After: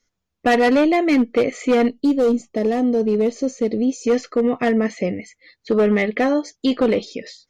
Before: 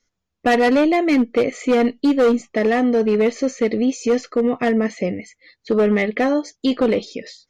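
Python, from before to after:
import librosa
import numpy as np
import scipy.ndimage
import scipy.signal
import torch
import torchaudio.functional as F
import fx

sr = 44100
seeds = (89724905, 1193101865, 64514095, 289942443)

y = fx.peak_eq(x, sr, hz=1800.0, db=-12.0, octaves=1.9, at=(1.88, 4.07))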